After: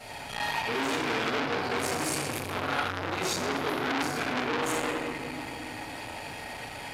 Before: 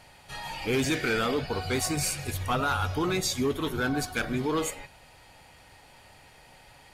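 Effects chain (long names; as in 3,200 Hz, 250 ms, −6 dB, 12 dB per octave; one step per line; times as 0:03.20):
high-pass filter 44 Hz 12 dB per octave
low-shelf EQ 130 Hz −8.5 dB
reversed playback
downward compressor 5 to 1, threshold −39 dBFS, peak gain reduction 13.5 dB
reversed playback
convolution reverb RT60 2.2 s, pre-delay 4 ms, DRR −13.5 dB
saturating transformer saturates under 3,200 Hz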